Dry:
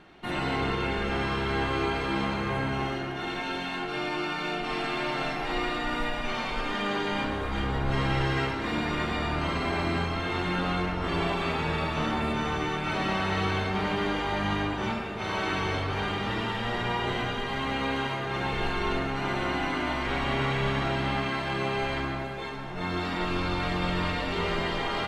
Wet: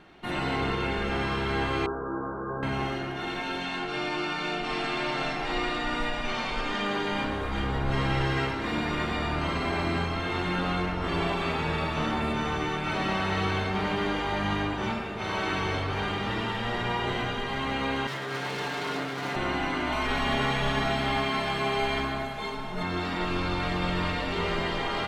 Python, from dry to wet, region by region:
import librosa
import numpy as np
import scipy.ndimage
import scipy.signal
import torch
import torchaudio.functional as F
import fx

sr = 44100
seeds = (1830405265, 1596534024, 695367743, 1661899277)

y = fx.chain(x, sr, fx.cheby_ripple(hz=1600.0, ripple_db=6),
    fx.hum_notches(base_hz=50, count=7), at=(1.86, 2.63))
y = fx.chain(y, sr, fx.lowpass(hz=7900.0, slope=12),
    fx.high_shelf(hz=5200.0, db=5.5), at=(3.61, 6.86))
y = fx.chain(y, sr, fx.lower_of_two(delay_ms=6.9),
    fx.highpass(hz=150.0, slope=12), at=(18.07, 19.36))
y = fx.chain(y, sr, fx.high_shelf(hz=9400.0, db=8.0),
    fx.hum_notches(base_hz=50, count=10),
    fx.comb(ms=4.7, depth=0.8), at=(19.92, 22.83))